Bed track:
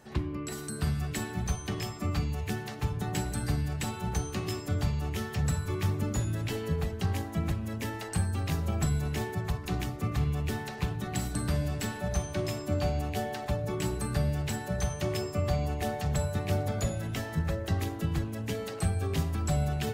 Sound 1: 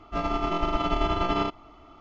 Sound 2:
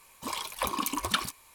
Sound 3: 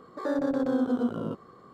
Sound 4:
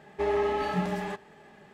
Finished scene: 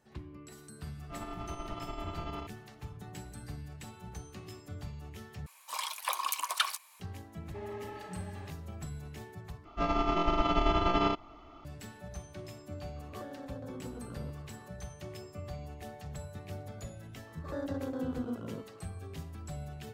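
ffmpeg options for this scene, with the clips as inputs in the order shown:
-filter_complex "[1:a]asplit=2[a][b];[3:a]asplit=2[c][d];[0:a]volume=-13.5dB[e];[2:a]highpass=f=690:w=0.5412,highpass=f=690:w=1.3066[f];[c]acompressor=threshold=-36dB:ratio=6:attack=3.2:release=140:knee=1:detection=peak[g];[e]asplit=3[h][i][j];[h]atrim=end=5.464[k];[f]atrim=end=1.54,asetpts=PTS-STARTPTS,volume=-1.5dB[l];[i]atrim=start=6.996:end=9.654[m];[b]atrim=end=2,asetpts=PTS-STARTPTS,volume=-2dB[n];[j]atrim=start=11.646[o];[a]atrim=end=2,asetpts=PTS-STARTPTS,volume=-15.5dB,afade=t=in:d=0.004:c=hsin,afade=t=out:st=1.996:d=0.004:c=hsin,adelay=970[p];[4:a]atrim=end=1.73,asetpts=PTS-STARTPTS,volume=-16dB,afade=t=in:d=0.004:c=hsin,afade=t=out:st=1.726:d=0.004:c=hsin,adelay=7350[q];[g]atrim=end=1.73,asetpts=PTS-STARTPTS,volume=-7dB,afade=t=in:d=0.004:c=hsin,afade=t=out:st=1.726:d=0.004:c=hsin,adelay=12960[r];[d]atrim=end=1.73,asetpts=PTS-STARTPTS,volume=-10dB,afade=t=in:d=0.004:c=hsin,afade=t=out:st=1.726:d=0.004:c=hsin,adelay=17270[s];[k][l]acrossfade=d=0.004:c1=hsin:c2=hsin[t];[t][m]acrossfade=d=0.004:c1=hsin:c2=hsin[u];[u][n]acrossfade=d=0.004:c1=hsin:c2=hsin[v];[v][o]acrossfade=d=0.004:c1=hsin:c2=hsin[w];[w][p][q][r][s]amix=inputs=5:normalize=0"

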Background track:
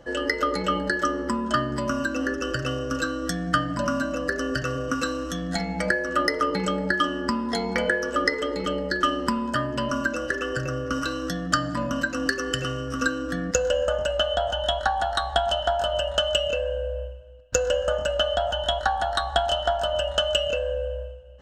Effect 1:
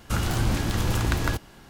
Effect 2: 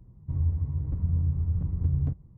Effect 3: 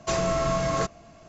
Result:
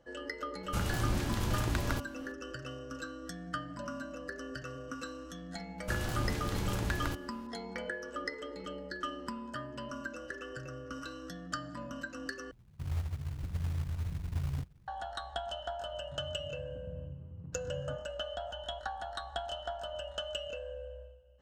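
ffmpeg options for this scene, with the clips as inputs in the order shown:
-filter_complex "[1:a]asplit=2[a][b];[2:a]asplit=2[c][d];[0:a]volume=-15.5dB[e];[c]acrusher=bits=4:mode=log:mix=0:aa=0.000001[f];[d]highpass=f=110:w=0.5412,highpass=f=110:w=1.3066[g];[e]asplit=2[h][i];[h]atrim=end=12.514[j];[f]atrim=end=2.37,asetpts=PTS-STARTPTS,volume=-9dB[k];[i]atrim=start=14.876[l];[a]atrim=end=1.69,asetpts=PTS-STARTPTS,volume=-8dB,afade=t=in:d=0.004:c=hsin,afade=t=out:st=1.686:d=0.004:c=hsin,adelay=630[m];[b]atrim=end=1.69,asetpts=PTS-STARTPTS,volume=-10dB,afade=t=in:d=0.004:c=hsin,afade=t=out:st=1.686:d=0.004:c=hsin,adelay=5780[n];[g]atrim=end=2.37,asetpts=PTS-STARTPTS,volume=-12.5dB,afade=t=in:d=0.004:c=hsin,afade=t=out:st=2.366:d=0.004:c=hsin,adelay=15830[o];[j][k]acrossfade=d=0.004:c1=hsin:c2=hsin[p];[p][l]acrossfade=d=0.004:c1=hsin:c2=hsin[q];[q][m][n][o]amix=inputs=4:normalize=0"

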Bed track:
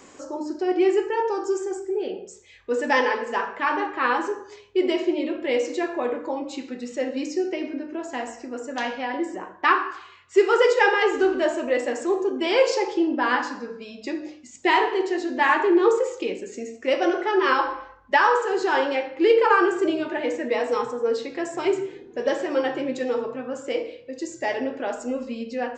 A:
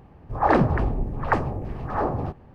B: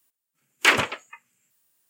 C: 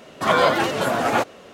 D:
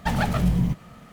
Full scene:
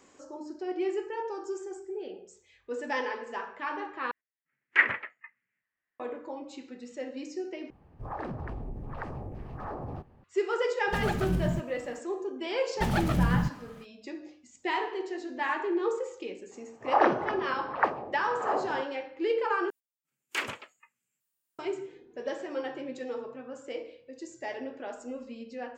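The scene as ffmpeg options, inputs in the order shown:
-filter_complex "[2:a]asplit=2[a][b];[1:a]asplit=2[c][d];[4:a]asplit=2[e][f];[0:a]volume=-11dB[g];[a]lowpass=f=1.9k:t=q:w=6.5[h];[c]acompressor=threshold=-24dB:ratio=6:attack=3.2:release=140:knee=1:detection=peak[i];[d]highpass=420,lowpass=4.2k[j];[g]asplit=4[k][l][m][n];[k]atrim=end=4.114[o];[h]atrim=end=1.89,asetpts=PTS-STARTPTS,volume=-14.5dB[p];[l]atrim=start=5.996:end=7.704[q];[i]atrim=end=2.54,asetpts=PTS-STARTPTS,volume=-9dB[r];[m]atrim=start=10.236:end=19.704[s];[b]atrim=end=1.89,asetpts=PTS-STARTPTS,volume=-14.5dB[t];[n]atrim=start=21.586[u];[e]atrim=end=1.12,asetpts=PTS-STARTPTS,volume=-7.5dB,afade=t=in:d=0.004:c=hsin,afade=t=out:st=1.116:d=0.004:c=hsin,adelay=10870[v];[f]atrim=end=1.12,asetpts=PTS-STARTPTS,volume=-4dB,afade=t=in:d=0.05,afade=t=out:st=1.07:d=0.05,adelay=12750[w];[j]atrim=end=2.54,asetpts=PTS-STARTPTS,volume=-2.5dB,afade=t=in:d=0.004:c=hsin,afade=t=out:st=2.536:d=0.004:c=hsin,adelay=16510[x];[o][p]acrossfade=d=0.004:c1=hsin:c2=hsin[y];[y][q]acrossfade=d=0.004:c1=hsin:c2=hsin[z];[z][r]acrossfade=d=0.004:c1=hsin:c2=hsin[aa];[aa][s]acrossfade=d=0.004:c1=hsin:c2=hsin[ab];[ab][t]acrossfade=d=0.004:c1=hsin:c2=hsin[ac];[ac][u]acrossfade=d=0.004:c1=hsin:c2=hsin[ad];[ad][v][w][x]amix=inputs=4:normalize=0"

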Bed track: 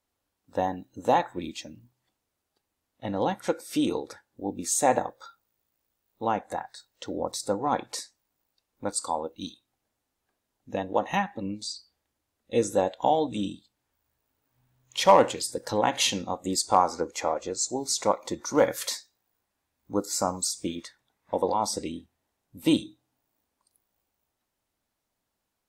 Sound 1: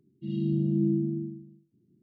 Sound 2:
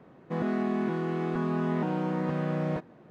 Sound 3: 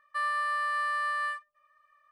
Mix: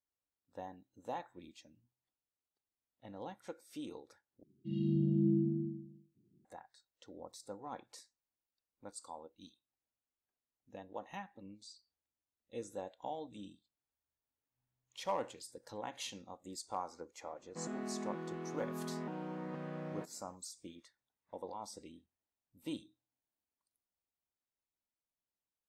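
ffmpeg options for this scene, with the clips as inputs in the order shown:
-filter_complex "[0:a]volume=-19.5dB[a];[2:a]highpass=160[b];[a]asplit=2[c][d];[c]atrim=end=4.434[e];[1:a]atrim=end=2.02,asetpts=PTS-STARTPTS,volume=-5dB[f];[d]atrim=start=6.446[g];[b]atrim=end=3.1,asetpts=PTS-STARTPTS,volume=-12.5dB,afade=t=in:d=0.004:c=hsin,afade=t=out:st=3.096:d=0.004:c=hsin,adelay=17250[h];[e][f]acrossfade=d=0.004:c1=hsin:c2=hsin[i];[i][g]acrossfade=d=0.004:c1=hsin:c2=hsin[j];[j][h]amix=inputs=2:normalize=0"

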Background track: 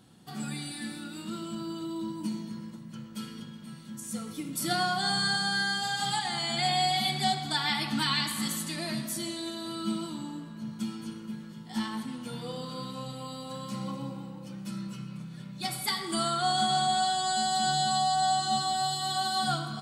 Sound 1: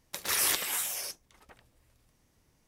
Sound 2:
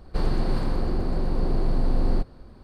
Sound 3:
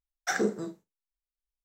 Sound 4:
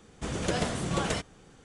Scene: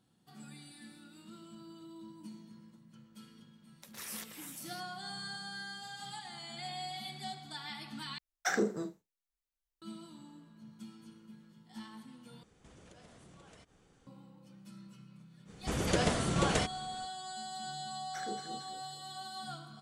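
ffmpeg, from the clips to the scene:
-filter_complex "[3:a]asplit=2[a][b];[4:a]asplit=2[c][d];[0:a]volume=-15dB[e];[1:a]alimiter=limit=-11dB:level=0:latency=1:release=106[f];[a]alimiter=limit=-18dB:level=0:latency=1:release=71[g];[c]acompressor=threshold=-44dB:ratio=6:attack=3.2:release=140:knee=1:detection=peak[h];[b]asplit=5[i][j][k][l][m];[j]adelay=225,afreqshift=41,volume=-11.5dB[n];[k]adelay=450,afreqshift=82,volume=-18.6dB[o];[l]adelay=675,afreqshift=123,volume=-25.8dB[p];[m]adelay=900,afreqshift=164,volume=-32.9dB[q];[i][n][o][p][q]amix=inputs=5:normalize=0[r];[e]asplit=3[s][t][u];[s]atrim=end=8.184[v];[g]atrim=end=1.64,asetpts=PTS-STARTPTS,volume=-2dB[w];[t]atrim=start=9.816:end=12.434[x];[h]atrim=end=1.64,asetpts=PTS-STARTPTS,volume=-11dB[y];[u]atrim=start=14.066[z];[f]atrim=end=2.67,asetpts=PTS-STARTPTS,volume=-16.5dB,afade=t=in:d=0.004:c=hsin,afade=t=out:st=2.666:d=0.004:c=hsin,adelay=162729S[aa];[d]atrim=end=1.64,asetpts=PTS-STARTPTS,volume=-0.5dB,afade=t=in:d=0.05,afade=t=out:st=1.59:d=0.05,adelay=15450[ab];[r]atrim=end=1.64,asetpts=PTS-STARTPTS,volume=-16.5dB,afade=t=in:d=0.004:c=hsin,afade=t=out:st=1.636:d=0.004:c=hsin,adelay=17870[ac];[v][w]acrossfade=d=0.004:c1=hsin:c2=hsin[ad];[ad][x]acrossfade=d=0.004:c1=hsin:c2=hsin[ae];[ae][y]acrossfade=d=0.004:c1=hsin:c2=hsin[af];[af][z]acrossfade=d=0.004:c1=hsin:c2=hsin[ag];[ag][aa][ab][ac]amix=inputs=4:normalize=0"

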